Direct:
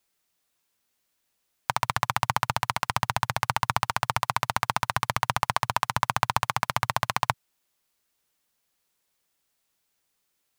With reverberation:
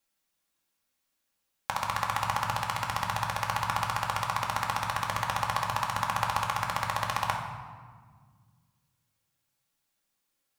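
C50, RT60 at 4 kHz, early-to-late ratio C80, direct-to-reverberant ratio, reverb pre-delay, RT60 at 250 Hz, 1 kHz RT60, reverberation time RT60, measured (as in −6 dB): 4.5 dB, 1.0 s, 7.0 dB, −0.5 dB, 4 ms, 2.6 s, 1.6 s, 1.7 s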